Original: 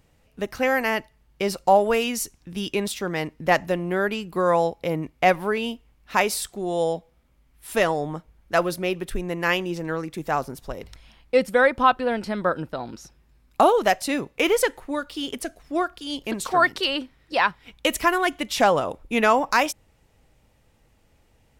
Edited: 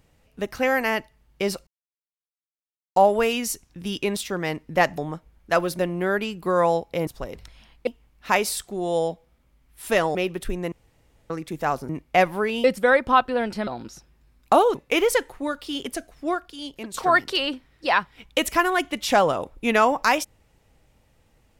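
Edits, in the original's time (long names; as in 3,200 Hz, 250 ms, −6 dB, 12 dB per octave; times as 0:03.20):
0:01.67: splice in silence 1.29 s
0:04.97–0:05.72: swap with 0:10.55–0:11.35
0:08.00–0:08.81: move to 0:03.69
0:09.38–0:09.96: fill with room tone
0:12.38–0:12.75: remove
0:13.83–0:14.23: remove
0:15.61–0:16.42: fade out, to −9.5 dB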